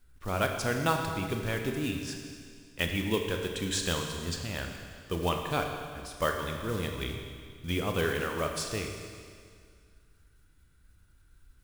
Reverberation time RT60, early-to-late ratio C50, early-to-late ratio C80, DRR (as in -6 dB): 2.1 s, 4.5 dB, 5.5 dB, 3.0 dB